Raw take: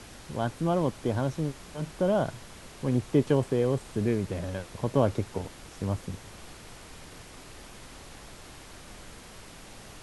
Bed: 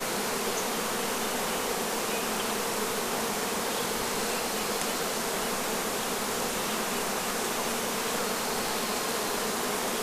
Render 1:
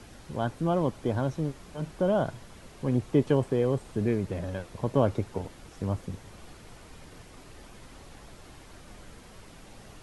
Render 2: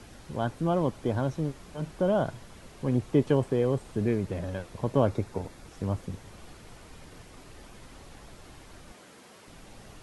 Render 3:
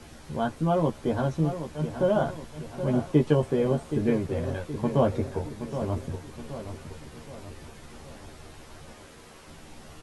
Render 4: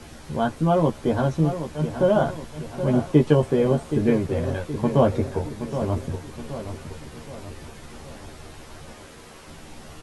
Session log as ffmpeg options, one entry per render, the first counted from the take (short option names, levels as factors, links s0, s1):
-af "afftdn=nr=6:nf=-48"
-filter_complex "[0:a]asettb=1/sr,asplit=3[s0][s1][s2];[s0]atrim=end=5.084[s3];[s1]atrim=start=5.08:end=5.67,asetpts=PTS-STARTPTS,afade=t=in:d=0.004:c=qsin,afade=t=out:st=0.586:d=0.004:c=qsin,bandreject=f=3000:w=8.5[s4];[s2]atrim=start=5.666[s5];[s3][s4]acrossfade=d=0.004:c1=hsin:c2=qsin[s6];[s6][s5]acrossfade=d=0.004:c1=qsin:c2=hsin,asettb=1/sr,asplit=3[s7][s8][s9];[s7]atrim=end=8.924[s10];[s8]atrim=start=8.92:end=9.48,asetpts=PTS-STARTPTS,afade=t=in:d=0.004:c=qsin,afade=t=out:st=0.556:d=0.004:c=qsin,highpass=220[s11];[s9]atrim=start=9.476[s12];[s10][s11]acrossfade=d=0.004:c1=hsin:c2=qsin[s13];[s13][s12]acrossfade=d=0.004:c1=qsin:c2=hsin"
-filter_complex "[0:a]asplit=2[s0][s1];[s1]adelay=13,volume=0.75[s2];[s0][s2]amix=inputs=2:normalize=0,asplit=2[s3][s4];[s4]adelay=772,lowpass=f=4700:p=1,volume=0.316,asplit=2[s5][s6];[s6]adelay=772,lowpass=f=4700:p=1,volume=0.49,asplit=2[s7][s8];[s8]adelay=772,lowpass=f=4700:p=1,volume=0.49,asplit=2[s9][s10];[s10]adelay=772,lowpass=f=4700:p=1,volume=0.49,asplit=2[s11][s12];[s12]adelay=772,lowpass=f=4700:p=1,volume=0.49[s13];[s3][s5][s7][s9][s11][s13]amix=inputs=6:normalize=0"
-af "volume=1.68"